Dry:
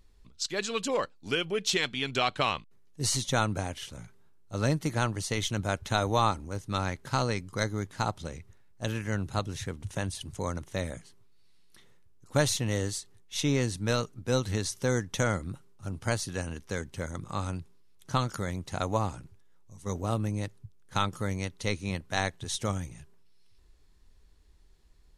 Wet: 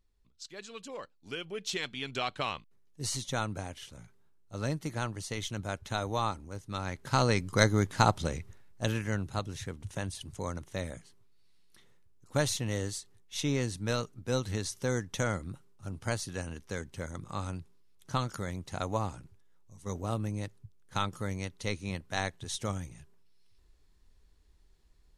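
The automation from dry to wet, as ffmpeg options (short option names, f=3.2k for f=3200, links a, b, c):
-af "volume=6dB,afade=t=in:st=0.95:d=1.01:silence=0.421697,afade=t=in:st=6.83:d=0.75:silence=0.251189,afade=t=out:st=8.24:d=1.05:silence=0.334965"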